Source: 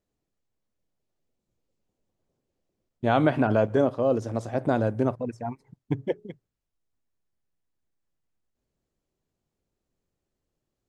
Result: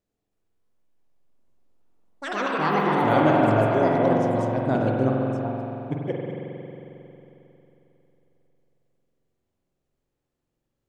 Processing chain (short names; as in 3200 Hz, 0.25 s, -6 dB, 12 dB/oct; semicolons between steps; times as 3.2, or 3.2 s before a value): echoes that change speed 0.315 s, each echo +5 st, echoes 3; spring tank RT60 3.3 s, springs 45 ms, chirp 70 ms, DRR -2 dB; gain -2 dB